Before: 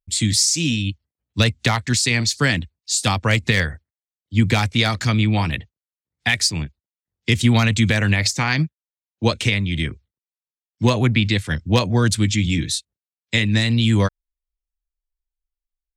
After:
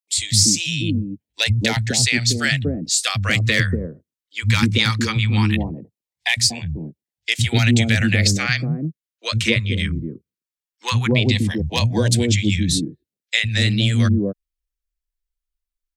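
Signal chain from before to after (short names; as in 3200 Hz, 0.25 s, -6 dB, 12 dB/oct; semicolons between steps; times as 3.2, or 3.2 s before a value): three bands offset in time highs, lows, mids 0.1/0.24 s, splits 170/630 Hz; LFO notch saw down 0.18 Hz 620–1500 Hz; gain +2 dB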